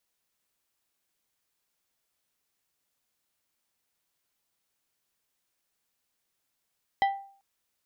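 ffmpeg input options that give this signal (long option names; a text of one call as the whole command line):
ffmpeg -f lavfi -i "aevalsrc='0.119*pow(10,-3*t/0.49)*sin(2*PI*789*t)+0.0501*pow(10,-3*t/0.258)*sin(2*PI*1972.5*t)+0.0211*pow(10,-3*t/0.186)*sin(2*PI*3156*t)+0.00891*pow(10,-3*t/0.159)*sin(2*PI*3945*t)+0.00376*pow(10,-3*t/0.132)*sin(2*PI*5128.5*t)':duration=0.39:sample_rate=44100" out.wav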